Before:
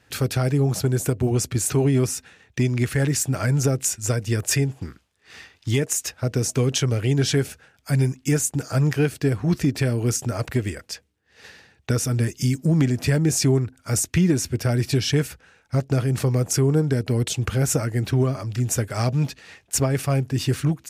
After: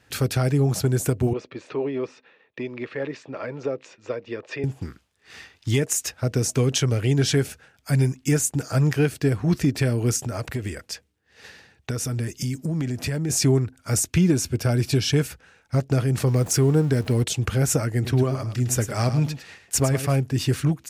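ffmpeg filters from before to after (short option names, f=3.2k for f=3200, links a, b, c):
-filter_complex "[0:a]asettb=1/sr,asplit=3[a][b][c];[a]atrim=end=1.334[d];[b]atrim=start=1.33:end=4.64,asetpts=PTS-STARTPTS,afade=t=in:d=0.004:c=qsin,afade=t=out:st=3.306:d=0.004:c=qsin,highpass=420,equalizer=f=520:t=q:w=4:g=4,equalizer=f=740:t=q:w=4:g=-7,equalizer=f=1.5k:t=q:w=4:g=-9,equalizer=f=2.1k:t=q:w=4:g=-5,equalizer=f=3k:t=q:w=4:g=-6,lowpass=f=3.1k:w=0.5412,lowpass=f=3.1k:w=1.3066[e];[c]atrim=start=4.636[f];[d][e]acrossfade=d=0.004:c1=hsin:c2=qsin[g];[g][f]acrossfade=d=0.004:c1=qsin:c2=hsin,asplit=3[h][i][j];[h]afade=t=out:st=10.2:d=0.02[k];[i]acompressor=threshold=-24dB:ratio=3:attack=3.2:release=140:knee=1:detection=peak,afade=t=in:st=10.2:d=0.02,afade=t=out:st=13.29:d=0.02[l];[j]afade=t=in:st=13.29:d=0.02[m];[k][l][m]amix=inputs=3:normalize=0,asettb=1/sr,asplit=3[n][o][p];[n]atrim=end=14.074[q];[o]atrim=start=14.07:end=15.26,asetpts=PTS-STARTPTS,afade=t=in:d=0.004:c=qsin,afade=t=out:st=1.186:d=0.004:c=qsin,bandreject=f=1.9k:w=9.9[r];[p]atrim=start=15.256[s];[q][r]acrossfade=d=0.004:c1=hsin:c2=qsin[t];[t][s]acrossfade=d=0.004:c1=qsin:c2=hsin,asettb=1/sr,asplit=3[u][v][w];[u]atrim=end=16.274[x];[v]atrim=start=16.27:end=17.24,asetpts=PTS-STARTPTS,afade=t=in:d=0.004:c=qsin,afade=t=out:st=0.966:d=0.004:c=qsin,aeval=exprs='val(0)+0.5*0.015*sgn(val(0))':c=same[y];[w]atrim=start=17.236[z];[x][y]acrossfade=d=0.004:c1=hsin:c2=qsin[aa];[aa][z]acrossfade=d=0.004:c1=qsin:c2=hsin,asettb=1/sr,asplit=3[ab][ac][ad];[ab]atrim=end=17.944[ae];[ac]atrim=start=17.94:end=20.16,asetpts=PTS-STARTPTS,afade=t=in:d=0.004:c=qsin,afade=t=out:st=2.216:d=0.004:c=qsin,aecho=1:1:106:0.299,atrim=end_sample=97902[af];[ad]atrim=start=20.156[ag];[ae][af]acrossfade=d=0.004:c1=hsin:c2=qsin[ah];[ah][ag]acrossfade=d=0.004:c1=qsin:c2=hsin"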